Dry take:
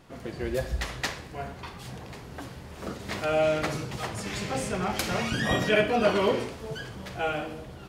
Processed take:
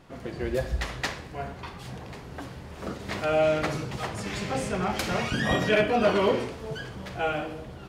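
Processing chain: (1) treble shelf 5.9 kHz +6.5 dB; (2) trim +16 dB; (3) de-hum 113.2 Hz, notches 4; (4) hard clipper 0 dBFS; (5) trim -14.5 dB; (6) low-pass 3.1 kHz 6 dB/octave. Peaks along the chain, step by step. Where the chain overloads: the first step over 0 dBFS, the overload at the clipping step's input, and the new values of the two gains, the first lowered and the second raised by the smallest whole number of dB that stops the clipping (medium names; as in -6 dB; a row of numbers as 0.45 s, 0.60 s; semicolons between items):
-10.0 dBFS, +6.0 dBFS, +6.0 dBFS, 0.0 dBFS, -14.5 dBFS, -14.5 dBFS; step 2, 6.0 dB; step 2 +10 dB, step 5 -8.5 dB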